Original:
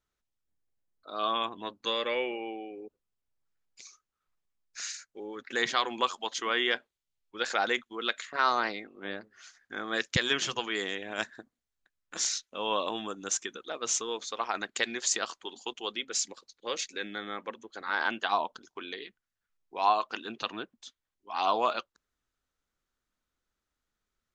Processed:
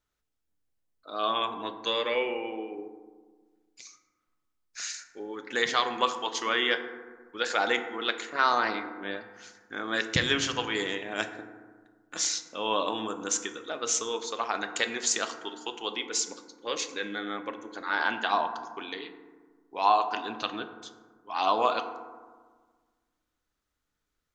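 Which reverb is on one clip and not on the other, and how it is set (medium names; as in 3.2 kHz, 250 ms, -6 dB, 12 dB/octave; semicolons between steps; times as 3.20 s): FDN reverb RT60 1.5 s, low-frequency decay 1.3×, high-frequency decay 0.35×, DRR 7 dB; trim +1.5 dB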